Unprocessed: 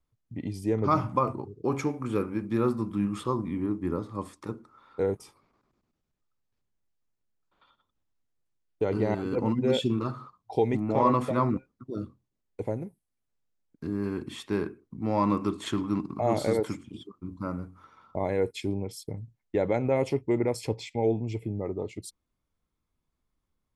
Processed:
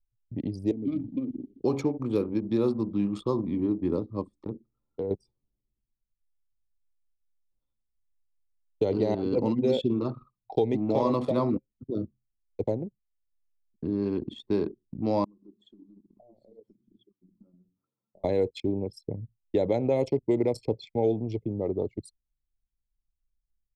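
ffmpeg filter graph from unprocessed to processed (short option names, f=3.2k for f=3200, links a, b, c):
-filter_complex "[0:a]asettb=1/sr,asplit=3[a][b][c];[a]atrim=end=0.714[d];[b]atrim=start=0.71:end=1.6,asetpts=PTS-STARTPTS,afade=t=in:d=0.004:c=qsin,afade=t=out:st=0.886:d=0.004:c=qsin,aeval=exprs='val(0)+0.5*0.0141*sgn(val(0))':c=same,asplit=3[e][f][g];[e]bandpass=f=270:t=q:w=8,volume=0dB[h];[f]bandpass=f=2.29k:t=q:w=8,volume=-6dB[i];[g]bandpass=f=3.01k:t=q:w=8,volume=-9dB[j];[h][i][j]amix=inputs=3:normalize=0,lowshelf=f=190:g=11.5[k];[c]atrim=start=1.596[l];[d][k]acrossfade=d=0.004:c1=hsin:c2=qsin[m];[m][l]acrossfade=d=0.004:c1=qsin:c2=hsin,asettb=1/sr,asplit=3[n][o][p];[n]atrim=end=4.474[q];[o]atrim=start=4.47:end=5.11,asetpts=PTS-STARTPTS,afade=t=in:d=0.004:c=qsin,afade=t=out:st=0.636:d=0.004:c=qsin,highshelf=f=2.9k:g=-10,acompressor=threshold=-30dB:ratio=20:attack=3.2:release=140:knee=1:detection=peak,volume=26dB,asoftclip=hard,volume=-26dB[r];[p]atrim=start=5.106[s];[q][r]acrossfade=d=0.004:c1=hsin:c2=qsin[t];[t][s]acrossfade=d=0.004:c1=qsin:c2=hsin,asettb=1/sr,asplit=3[u][v][w];[u]atrim=end=15.244[x];[v]atrim=start=15.24:end=18.24,asetpts=PTS-STARTPTS,afade=t=in:d=0.004:c=qsin,afade=t=out:st=2.996:d=0.004:c=qsin,highpass=f=130:w=0.5412,highpass=f=130:w=1.3066,acompressor=threshold=-43dB:ratio=4:attack=3.2:release=140:knee=1:detection=peak,flanger=delay=0.4:depth=4.5:regen=87:speed=1.2:shape=sinusoidal[y];[w]atrim=start=18.236[z];[x][y]acrossfade=d=0.004:c1=hsin:c2=qsin[aa];[aa][z]acrossfade=d=0.004:c1=qsin:c2=hsin,anlmdn=1.58,firequalizer=gain_entry='entry(600,0);entry(1400,-14);entry(4000,12);entry(6400,6)':delay=0.05:min_phase=1,acrossover=split=230|2200[ab][ac][ad];[ab]acompressor=threshold=-39dB:ratio=4[ae];[ac]acompressor=threshold=-26dB:ratio=4[af];[ad]acompressor=threshold=-55dB:ratio=4[ag];[ae][af][ag]amix=inputs=3:normalize=0,volume=4.5dB"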